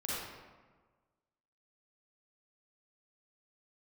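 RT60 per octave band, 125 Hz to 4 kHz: 1.6, 1.5, 1.4, 1.4, 1.1, 0.80 seconds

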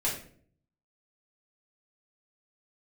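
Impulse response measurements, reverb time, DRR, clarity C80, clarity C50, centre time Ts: 0.55 s, −6.0 dB, 10.0 dB, 5.5 dB, 32 ms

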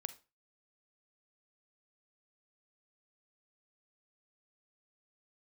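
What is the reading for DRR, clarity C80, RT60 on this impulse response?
12.5 dB, 21.0 dB, 0.30 s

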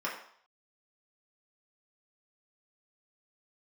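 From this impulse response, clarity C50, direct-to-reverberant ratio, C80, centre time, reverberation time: 6.0 dB, −6.5 dB, 9.0 dB, 32 ms, 0.60 s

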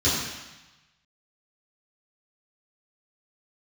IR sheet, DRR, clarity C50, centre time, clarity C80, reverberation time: −11.5 dB, 0.5 dB, 76 ms, 2.5 dB, 1.1 s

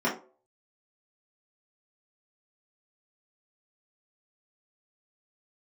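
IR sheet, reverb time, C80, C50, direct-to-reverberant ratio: 0.40 s, 14.5 dB, 8.5 dB, −8.5 dB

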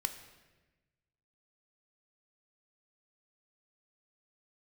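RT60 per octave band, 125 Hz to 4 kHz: 1.8, 1.5, 1.3, 1.0, 1.2, 0.95 seconds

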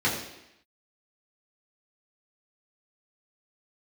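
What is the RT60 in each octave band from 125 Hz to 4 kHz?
0.70, 0.85, 0.80, 0.85, 0.90, 0.85 seconds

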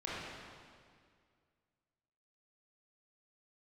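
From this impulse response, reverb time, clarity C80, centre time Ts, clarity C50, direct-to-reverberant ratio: 2.0 s, −1.5 dB, 143 ms, −4.0 dB, −8.0 dB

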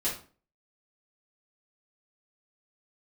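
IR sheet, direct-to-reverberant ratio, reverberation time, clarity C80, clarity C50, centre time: −9.5 dB, 0.40 s, 12.5 dB, 6.5 dB, 28 ms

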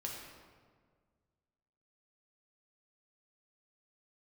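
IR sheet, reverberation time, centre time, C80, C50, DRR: 1.7 s, 72 ms, 3.5 dB, 1.5 dB, −2.0 dB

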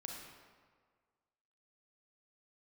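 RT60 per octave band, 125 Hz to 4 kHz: 1.6, 1.6, 1.7, 1.7, 1.4, 1.1 seconds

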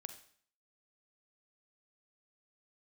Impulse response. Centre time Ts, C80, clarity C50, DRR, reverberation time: 10 ms, 14.0 dB, 10.5 dB, 8.5 dB, 0.55 s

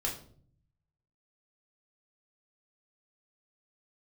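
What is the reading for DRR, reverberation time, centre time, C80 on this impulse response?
−2.5 dB, 0.55 s, 24 ms, 13.0 dB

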